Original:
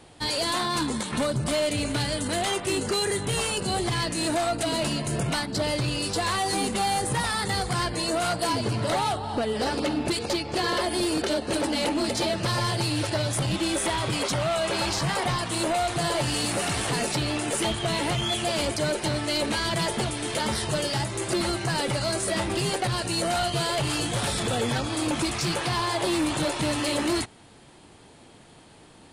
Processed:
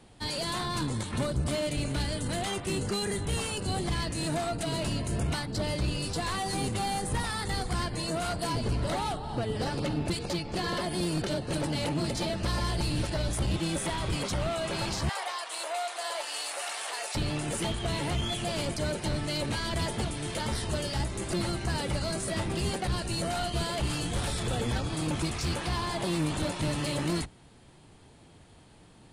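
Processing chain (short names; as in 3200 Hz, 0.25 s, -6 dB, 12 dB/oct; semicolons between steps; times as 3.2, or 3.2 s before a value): octaver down 1 oct, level +4 dB; 15.09–17.15 HPF 590 Hz 24 dB/oct; gain -6.5 dB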